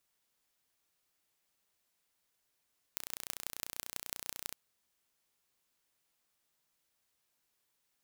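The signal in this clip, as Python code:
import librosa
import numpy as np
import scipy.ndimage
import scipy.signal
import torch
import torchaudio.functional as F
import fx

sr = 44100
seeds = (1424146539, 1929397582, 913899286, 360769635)

y = fx.impulse_train(sr, length_s=1.58, per_s=30.2, accent_every=5, level_db=-8.5)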